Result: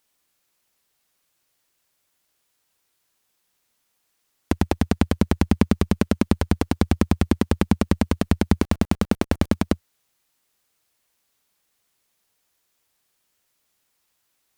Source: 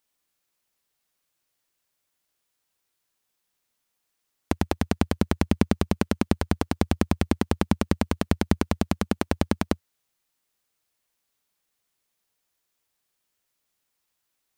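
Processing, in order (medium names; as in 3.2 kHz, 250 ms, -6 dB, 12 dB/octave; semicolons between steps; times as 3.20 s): 8.62–9.54 s: word length cut 8-bit, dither none; Chebyshev shaper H 5 -19 dB, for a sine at -4 dBFS; trim +2.5 dB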